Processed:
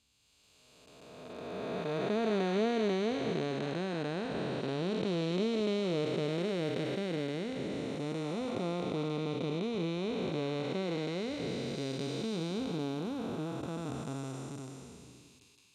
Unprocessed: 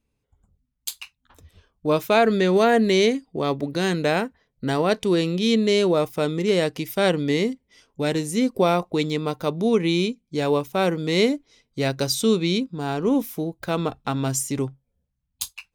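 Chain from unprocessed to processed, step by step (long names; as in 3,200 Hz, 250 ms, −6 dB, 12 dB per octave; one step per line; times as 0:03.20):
spectrum smeared in time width 1,160 ms
high-pass filter 66 Hz
reverb reduction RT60 1 s
low-pass filter 7,300 Hz 12 dB per octave
level −3.5 dB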